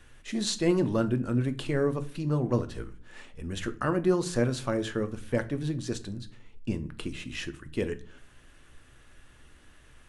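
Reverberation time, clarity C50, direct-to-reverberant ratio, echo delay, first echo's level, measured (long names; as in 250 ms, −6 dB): 0.45 s, 17.5 dB, 9.5 dB, no echo audible, no echo audible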